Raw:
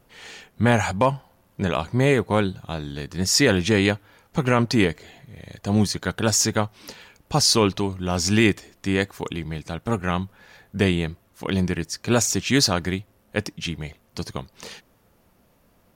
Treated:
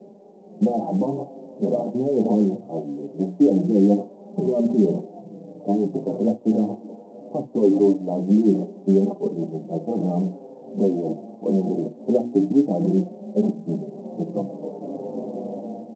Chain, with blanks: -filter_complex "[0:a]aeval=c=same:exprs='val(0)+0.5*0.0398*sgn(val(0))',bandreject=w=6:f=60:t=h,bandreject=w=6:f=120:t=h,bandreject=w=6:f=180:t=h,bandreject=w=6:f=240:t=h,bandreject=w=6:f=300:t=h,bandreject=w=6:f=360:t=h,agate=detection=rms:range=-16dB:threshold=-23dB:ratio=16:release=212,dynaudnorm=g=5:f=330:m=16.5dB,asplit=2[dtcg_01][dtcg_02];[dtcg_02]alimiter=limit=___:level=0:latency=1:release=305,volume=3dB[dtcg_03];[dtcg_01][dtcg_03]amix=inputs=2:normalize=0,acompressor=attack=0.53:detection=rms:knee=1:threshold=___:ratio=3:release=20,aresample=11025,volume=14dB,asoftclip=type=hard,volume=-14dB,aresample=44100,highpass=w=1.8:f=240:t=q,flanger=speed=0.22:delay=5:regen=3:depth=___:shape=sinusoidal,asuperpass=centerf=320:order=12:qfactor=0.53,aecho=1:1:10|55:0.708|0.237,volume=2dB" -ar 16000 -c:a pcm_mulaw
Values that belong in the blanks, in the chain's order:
-8dB, -19dB, 3.7